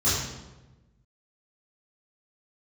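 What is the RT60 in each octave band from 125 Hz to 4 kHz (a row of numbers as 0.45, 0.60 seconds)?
1.6, 1.4, 1.2, 1.0, 0.85, 0.75 seconds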